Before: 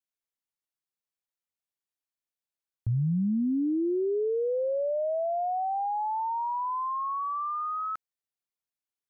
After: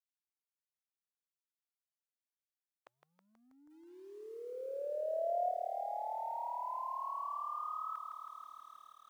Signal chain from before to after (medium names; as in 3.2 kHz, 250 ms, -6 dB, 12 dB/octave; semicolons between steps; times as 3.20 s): gate with hold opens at -23 dBFS; compression 2.5:1, threshold -44 dBFS, peak gain reduction 12.5 dB; high-pass 790 Hz 24 dB/octave; bit-crushed delay 161 ms, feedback 80%, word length 13-bit, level -7 dB; trim +10.5 dB